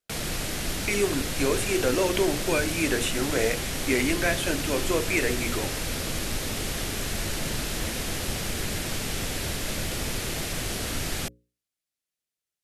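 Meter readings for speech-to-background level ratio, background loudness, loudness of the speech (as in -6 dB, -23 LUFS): 3.0 dB, -30.0 LUFS, -27.0 LUFS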